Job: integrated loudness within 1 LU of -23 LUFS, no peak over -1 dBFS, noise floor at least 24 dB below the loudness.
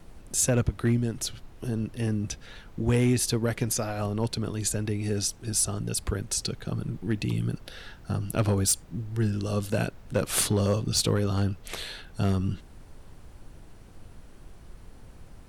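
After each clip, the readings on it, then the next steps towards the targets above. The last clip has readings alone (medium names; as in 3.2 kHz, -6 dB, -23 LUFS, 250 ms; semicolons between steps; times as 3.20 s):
clipped samples 0.3%; clipping level -16.5 dBFS; noise floor -49 dBFS; noise floor target -52 dBFS; loudness -28.0 LUFS; peak level -16.5 dBFS; loudness target -23.0 LUFS
-> clip repair -16.5 dBFS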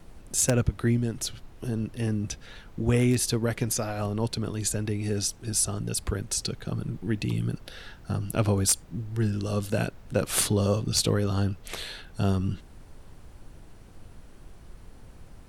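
clipped samples 0.0%; noise floor -49 dBFS; noise floor target -52 dBFS
-> noise print and reduce 6 dB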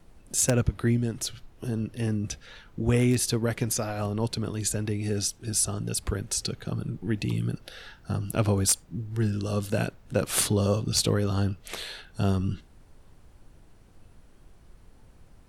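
noise floor -54 dBFS; loudness -27.5 LUFS; peak level -7.5 dBFS; loudness target -23.0 LUFS
-> trim +4.5 dB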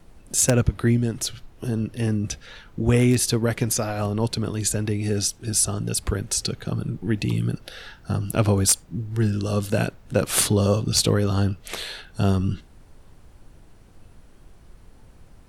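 loudness -23.0 LUFS; peak level -3.0 dBFS; noise floor -50 dBFS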